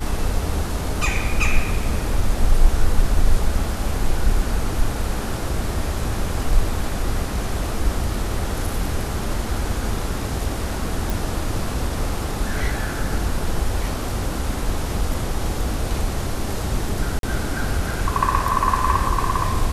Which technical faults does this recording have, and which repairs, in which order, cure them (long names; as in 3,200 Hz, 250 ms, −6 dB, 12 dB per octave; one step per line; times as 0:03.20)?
0:11.10: click
0:17.19–0:17.23: drop-out 42 ms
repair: click removal
repair the gap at 0:17.19, 42 ms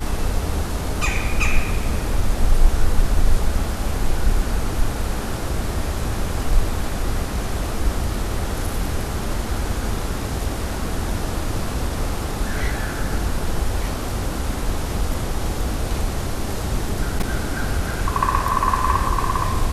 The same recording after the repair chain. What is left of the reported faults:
none of them is left